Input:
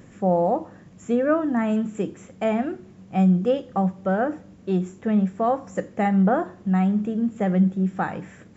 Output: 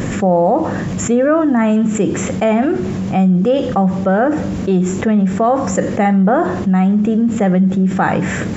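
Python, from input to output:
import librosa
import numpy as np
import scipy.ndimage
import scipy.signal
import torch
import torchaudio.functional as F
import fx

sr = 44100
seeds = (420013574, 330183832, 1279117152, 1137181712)

y = fx.env_flatten(x, sr, amount_pct=70)
y = y * librosa.db_to_amplitude(4.0)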